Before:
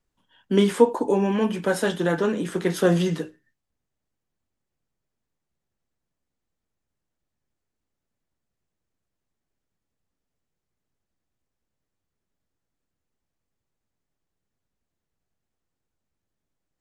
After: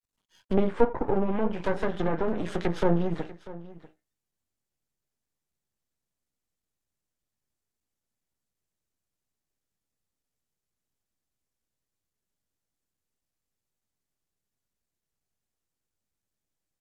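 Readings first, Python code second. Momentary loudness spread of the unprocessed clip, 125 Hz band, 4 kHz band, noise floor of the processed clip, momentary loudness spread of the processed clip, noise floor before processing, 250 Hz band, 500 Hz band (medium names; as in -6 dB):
7 LU, -4.5 dB, -12.0 dB, under -85 dBFS, 13 LU, -83 dBFS, -5.5 dB, -5.5 dB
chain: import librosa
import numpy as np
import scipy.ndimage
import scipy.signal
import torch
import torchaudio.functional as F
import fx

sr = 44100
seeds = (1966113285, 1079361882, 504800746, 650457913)

p1 = np.maximum(x, 0.0)
p2 = fx.env_lowpass_down(p1, sr, base_hz=1100.0, full_db=-21.0)
p3 = fx.high_shelf(p2, sr, hz=3800.0, db=9.5)
p4 = fx.noise_reduce_blind(p3, sr, reduce_db=6)
y = p4 + fx.echo_single(p4, sr, ms=642, db=-18.0, dry=0)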